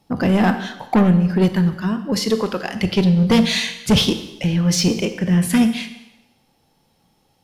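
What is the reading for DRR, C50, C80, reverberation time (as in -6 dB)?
8.5 dB, 10.5 dB, 12.5 dB, 0.95 s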